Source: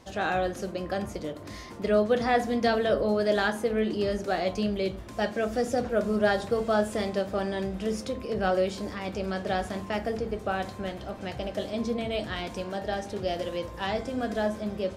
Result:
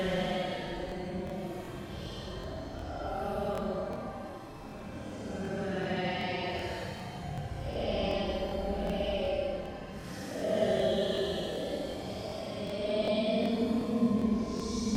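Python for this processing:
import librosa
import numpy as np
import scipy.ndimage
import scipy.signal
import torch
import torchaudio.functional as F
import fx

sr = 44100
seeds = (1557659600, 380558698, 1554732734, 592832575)

y = fx.paulstretch(x, sr, seeds[0], factor=15.0, window_s=0.05, from_s=10.87)
y = fx.buffer_crackle(y, sr, first_s=0.87, period_s=0.38, block=1024, kind='repeat')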